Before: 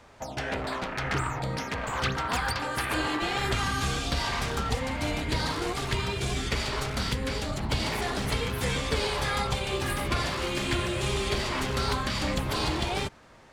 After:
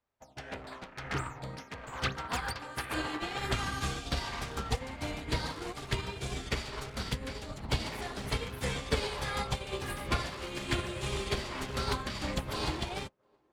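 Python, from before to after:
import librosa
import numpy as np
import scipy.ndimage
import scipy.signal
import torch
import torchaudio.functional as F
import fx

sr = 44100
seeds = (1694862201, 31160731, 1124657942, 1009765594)

y = fx.echo_banded(x, sr, ms=713, feedback_pct=69, hz=510.0, wet_db=-12.5)
y = fx.upward_expand(y, sr, threshold_db=-46.0, expansion=2.5)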